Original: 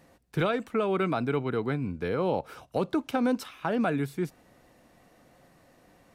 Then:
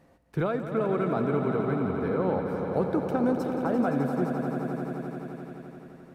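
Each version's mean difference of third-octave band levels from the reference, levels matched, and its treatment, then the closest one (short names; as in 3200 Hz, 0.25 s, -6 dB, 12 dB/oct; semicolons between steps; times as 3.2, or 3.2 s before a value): 9.0 dB: high shelf 2100 Hz -9 dB; swelling echo 86 ms, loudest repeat 5, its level -10 dB; dynamic EQ 3000 Hz, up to -8 dB, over -55 dBFS, Q 1.5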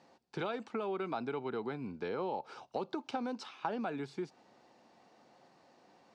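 4.5 dB: speaker cabinet 120–6700 Hz, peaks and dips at 220 Hz +5 dB, 380 Hz +6 dB, 850 Hz +9 dB, 1900 Hz -4 dB, 4600 Hz +5 dB; compressor, threshold -26 dBFS, peak gain reduction 8 dB; low shelf 370 Hz -8 dB; gain -4 dB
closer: second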